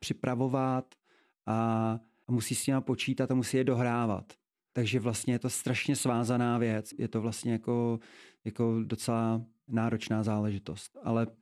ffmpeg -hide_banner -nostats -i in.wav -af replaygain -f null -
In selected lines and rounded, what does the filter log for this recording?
track_gain = +13.0 dB
track_peak = 0.161